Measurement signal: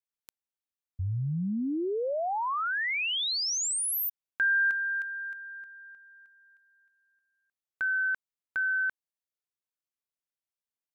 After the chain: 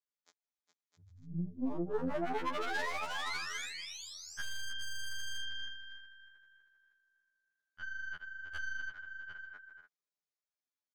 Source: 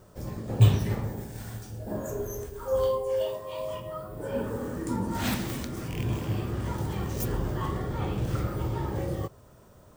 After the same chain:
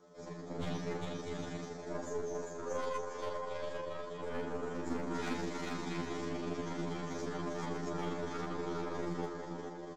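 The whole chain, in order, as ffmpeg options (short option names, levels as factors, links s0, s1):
-filter_complex "[0:a]aresample=16000,aresample=44100,asplit=2[s0][s1];[s1]aecho=0:1:410|656|803.6|892.2|945.3:0.631|0.398|0.251|0.158|0.1[s2];[s0][s2]amix=inputs=2:normalize=0,acrossover=split=2600[s3][s4];[s4]acompressor=threshold=0.00708:ratio=4:attack=1:release=60[s5];[s3][s5]amix=inputs=2:normalize=0,highpass=f=190:w=0.5412,highpass=f=190:w=1.3066,aecho=1:1:6.8:0.9,asoftclip=type=tanh:threshold=0.0668,bandreject=f=2800:w=5,aeval=exprs='0.0531*(abs(mod(val(0)/0.0531+3,4)-2)-1)':c=same,aeval=exprs='0.0562*(cos(1*acos(clip(val(0)/0.0562,-1,1)))-cos(1*PI/2))+0.0158*(cos(2*acos(clip(val(0)/0.0562,-1,1)))-cos(2*PI/2))':c=same,tremolo=f=25:d=0.75,afftfilt=real='re*2*eq(mod(b,4),0)':imag='im*2*eq(mod(b,4),0)':win_size=2048:overlap=0.75,volume=0.841"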